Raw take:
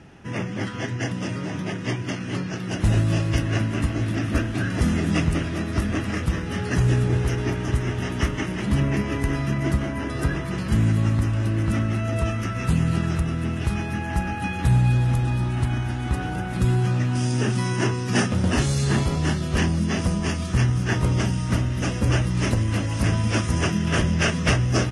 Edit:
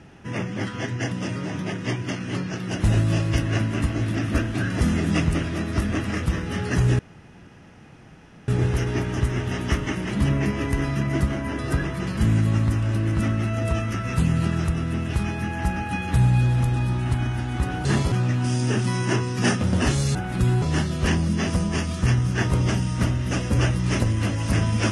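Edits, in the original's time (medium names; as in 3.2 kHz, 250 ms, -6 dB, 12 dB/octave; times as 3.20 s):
6.99 s: insert room tone 1.49 s
16.36–16.83 s: swap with 18.86–19.13 s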